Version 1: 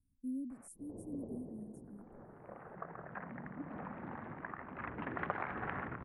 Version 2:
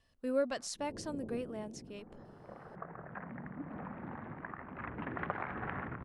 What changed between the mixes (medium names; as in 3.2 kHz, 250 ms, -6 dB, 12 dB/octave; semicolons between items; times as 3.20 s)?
speech: remove Chebyshev band-stop 290–9200 Hz, order 4; master: add tone controls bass +3 dB, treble +3 dB